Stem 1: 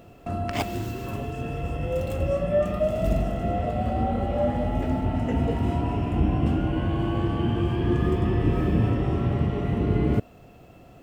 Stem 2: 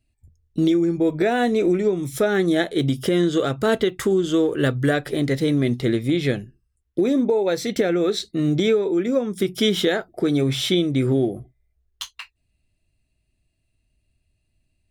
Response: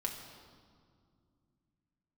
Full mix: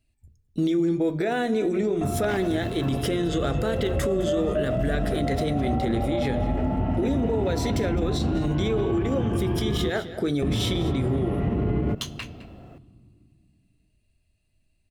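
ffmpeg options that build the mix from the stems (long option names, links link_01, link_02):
-filter_complex "[0:a]highshelf=frequency=3700:gain=-12,adelay=1750,volume=1dB,asplit=3[link_01][link_02][link_03];[link_01]atrim=end=9.9,asetpts=PTS-STARTPTS,afade=type=out:start_time=9.896:duration=0.004:curve=hsin[link_04];[link_02]atrim=start=9.9:end=10.42,asetpts=PTS-STARTPTS,volume=0[link_05];[link_03]atrim=start=10.42,asetpts=PTS-STARTPTS,afade=type=in:duration=0.004:curve=hsin[link_06];[link_04][link_05][link_06]concat=n=3:v=0:a=1,asplit=2[link_07][link_08];[link_08]volume=-14.5dB[link_09];[1:a]bandreject=frequency=60:width_type=h:width=6,bandreject=frequency=120:width_type=h:width=6,bandreject=frequency=180:width_type=h:width=6,bandreject=frequency=240:width_type=h:width=6,bandreject=frequency=300:width_type=h:width=6,bandreject=frequency=360:width_type=h:width=6,bandreject=frequency=420:width_type=h:width=6,alimiter=limit=-13.5dB:level=0:latency=1:release=155,volume=-1.5dB,asplit=3[link_10][link_11][link_12];[link_11]volume=-12.5dB[link_13];[link_12]volume=-15.5dB[link_14];[2:a]atrim=start_sample=2205[link_15];[link_09][link_13]amix=inputs=2:normalize=0[link_16];[link_16][link_15]afir=irnorm=-1:irlink=0[link_17];[link_14]aecho=0:1:210:1[link_18];[link_07][link_10][link_17][link_18]amix=inputs=4:normalize=0,alimiter=limit=-16.5dB:level=0:latency=1:release=46"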